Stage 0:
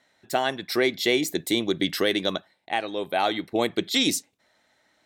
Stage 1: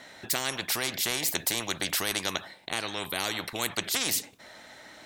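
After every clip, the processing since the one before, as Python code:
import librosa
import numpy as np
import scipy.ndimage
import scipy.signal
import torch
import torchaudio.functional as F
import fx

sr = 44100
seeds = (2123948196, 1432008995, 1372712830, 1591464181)

y = fx.spectral_comp(x, sr, ratio=4.0)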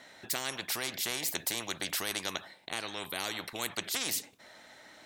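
y = fx.low_shelf(x, sr, hz=110.0, db=-5.0)
y = y * 10.0 ** (-5.0 / 20.0)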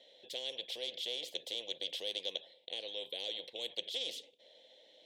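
y = fx.double_bandpass(x, sr, hz=1300.0, octaves=2.7)
y = y * 10.0 ** (4.0 / 20.0)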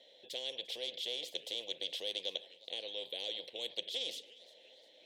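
y = fx.echo_warbled(x, sr, ms=353, feedback_pct=46, rate_hz=2.8, cents=193, wet_db=-21)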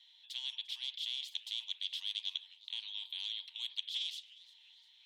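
y = scipy.signal.sosfilt(scipy.signal.cheby1(6, 6, 890.0, 'highpass', fs=sr, output='sos'), x)
y = y * 10.0 ** (1.0 / 20.0)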